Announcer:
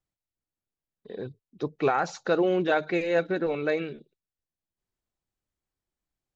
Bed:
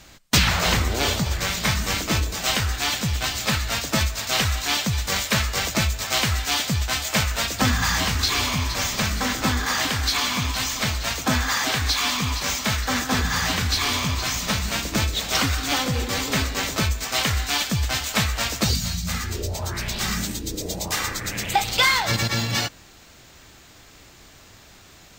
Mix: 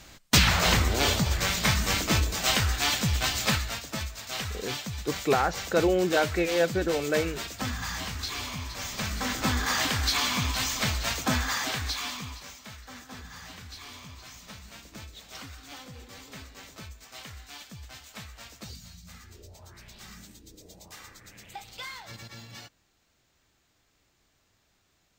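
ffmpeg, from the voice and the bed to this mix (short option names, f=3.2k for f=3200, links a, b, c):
-filter_complex "[0:a]adelay=3450,volume=0dB[a];[1:a]volume=6.5dB,afade=t=out:st=3.47:d=0.33:silence=0.316228,afade=t=in:st=8.78:d=0.86:silence=0.375837,afade=t=out:st=11.09:d=1.44:silence=0.125893[b];[a][b]amix=inputs=2:normalize=0"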